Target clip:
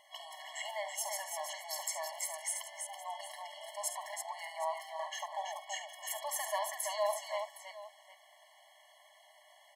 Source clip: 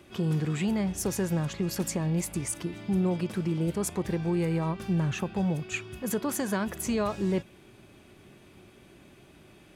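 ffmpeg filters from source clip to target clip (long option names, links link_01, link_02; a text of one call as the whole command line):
ffmpeg -i in.wav -af "aecho=1:1:50|70|330|763:0.251|0.251|0.531|0.158,afftfilt=real='re*eq(mod(floor(b*sr/1024/560),2),1)':imag='im*eq(mod(floor(b*sr/1024/560),2),1)':win_size=1024:overlap=0.75" out.wav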